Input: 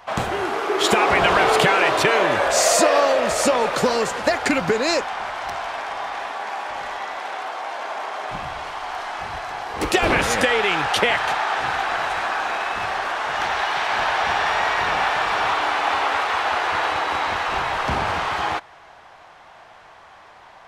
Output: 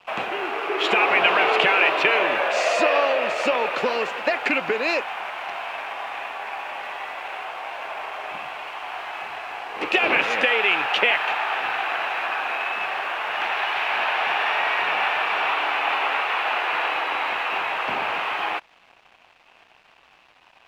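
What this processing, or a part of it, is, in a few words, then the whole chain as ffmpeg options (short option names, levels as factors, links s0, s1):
pocket radio on a weak battery: -af "highpass=300,lowpass=3200,aeval=exprs='sgn(val(0))*max(abs(val(0))-0.00447,0)':c=same,equalizer=f=2600:t=o:w=0.48:g=11,volume=0.708"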